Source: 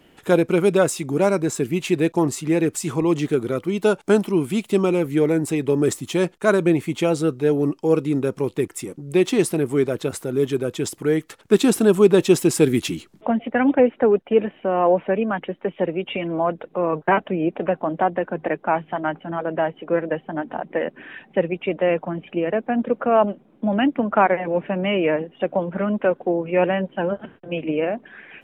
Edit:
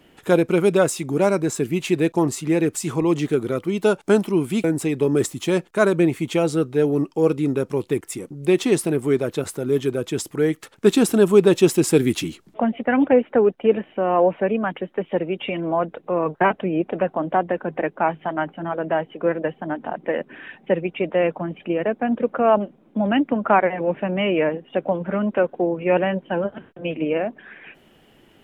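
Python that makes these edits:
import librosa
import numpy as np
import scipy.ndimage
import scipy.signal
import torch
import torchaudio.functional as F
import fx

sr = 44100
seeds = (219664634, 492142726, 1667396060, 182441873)

y = fx.edit(x, sr, fx.cut(start_s=4.64, length_s=0.67), tone=tone)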